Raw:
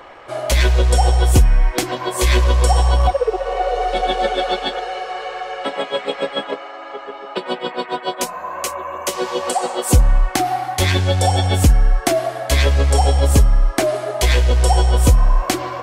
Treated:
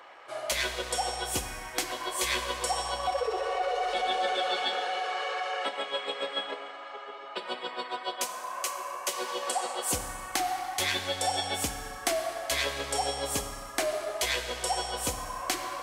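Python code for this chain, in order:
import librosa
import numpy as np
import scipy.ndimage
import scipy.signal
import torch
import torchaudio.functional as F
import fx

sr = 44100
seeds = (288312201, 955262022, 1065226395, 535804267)

y = fx.highpass(x, sr, hz=910.0, slope=6)
y = fx.rev_schroeder(y, sr, rt60_s=1.7, comb_ms=28, drr_db=8.5)
y = fx.env_flatten(y, sr, amount_pct=50, at=(3.12, 5.69))
y = y * librosa.db_to_amplitude(-7.5)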